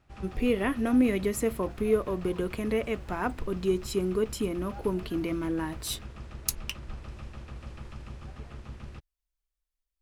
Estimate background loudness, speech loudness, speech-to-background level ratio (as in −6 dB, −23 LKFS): −44.0 LKFS, −30.0 LKFS, 14.0 dB